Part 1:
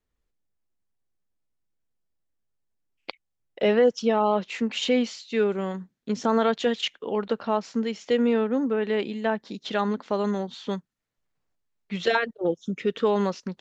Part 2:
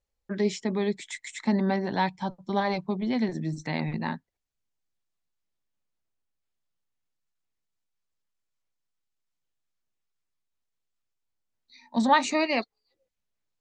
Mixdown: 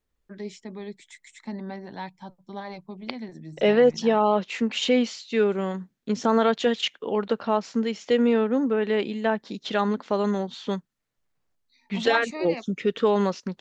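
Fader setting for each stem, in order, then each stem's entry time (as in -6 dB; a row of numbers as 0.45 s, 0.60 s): +1.5 dB, -10.0 dB; 0.00 s, 0.00 s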